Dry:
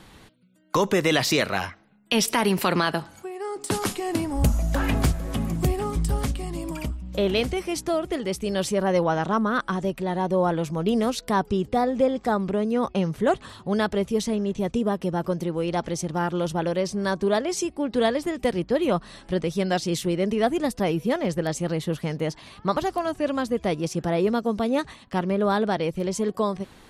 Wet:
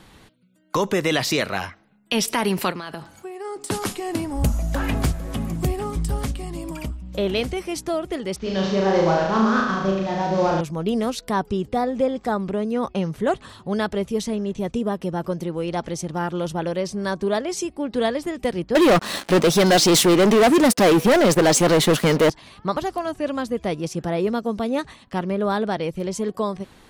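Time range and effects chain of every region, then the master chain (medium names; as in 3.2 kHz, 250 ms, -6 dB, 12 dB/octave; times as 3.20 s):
2.70–3.44 s: compression 12:1, threshold -27 dBFS + crackle 540 per s -60 dBFS
8.36–10.61 s: CVSD coder 32 kbps + flutter echo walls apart 6.2 m, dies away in 0.96 s
18.75–22.30 s: high-pass 240 Hz + waveshaping leveller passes 5
whole clip: none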